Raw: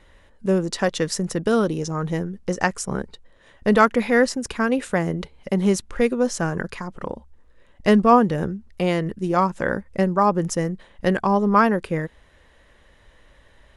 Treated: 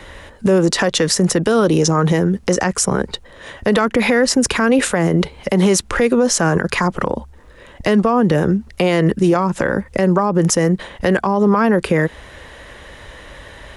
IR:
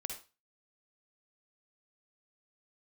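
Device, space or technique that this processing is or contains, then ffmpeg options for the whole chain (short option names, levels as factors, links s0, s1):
mastering chain: -filter_complex "[0:a]highpass=f=58:p=1,equalizer=f=210:t=o:w=0.77:g=-2.5,acrossover=split=140|400[s0][s1][s2];[s0]acompressor=threshold=0.00794:ratio=4[s3];[s1]acompressor=threshold=0.0447:ratio=4[s4];[s2]acompressor=threshold=0.0631:ratio=4[s5];[s3][s4][s5]amix=inputs=3:normalize=0,acompressor=threshold=0.0355:ratio=1.5,alimiter=level_in=15:limit=0.891:release=50:level=0:latency=1,volume=0.562"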